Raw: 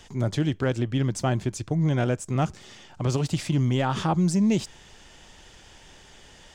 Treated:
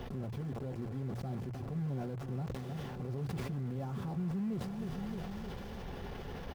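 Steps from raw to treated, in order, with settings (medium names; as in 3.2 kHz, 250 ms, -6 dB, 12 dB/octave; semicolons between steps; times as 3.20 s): one-bit delta coder 32 kbps, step -39 dBFS; feedback delay 309 ms, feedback 54%, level -19 dB; compression 12:1, threshold -37 dBFS, peak gain reduction 19 dB; delay 293 ms -23.5 dB; peak limiter -35.5 dBFS, peak gain reduction 9 dB; bit crusher 8-bit; tilt shelf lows +10 dB, about 1.4 kHz; hum notches 60/120 Hz; comb of notches 310 Hz; decay stretcher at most 27 dB/s; trim -4 dB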